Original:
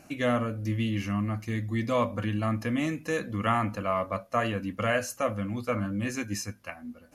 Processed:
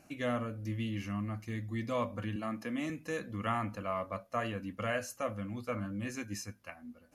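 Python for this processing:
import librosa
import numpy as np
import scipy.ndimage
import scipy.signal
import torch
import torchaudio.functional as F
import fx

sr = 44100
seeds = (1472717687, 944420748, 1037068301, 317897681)

y = fx.highpass(x, sr, hz=160.0, slope=24, at=(2.36, 2.9))
y = F.gain(torch.from_numpy(y), -7.5).numpy()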